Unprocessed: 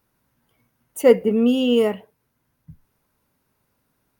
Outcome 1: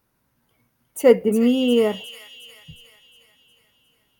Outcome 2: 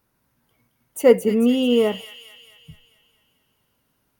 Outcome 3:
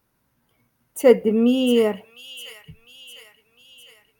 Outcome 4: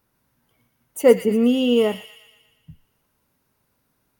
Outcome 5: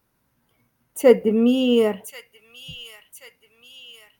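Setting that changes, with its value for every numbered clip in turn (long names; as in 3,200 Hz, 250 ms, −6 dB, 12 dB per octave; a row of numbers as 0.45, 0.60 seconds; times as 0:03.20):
delay with a high-pass on its return, delay time: 359, 220, 704, 118, 1,083 milliseconds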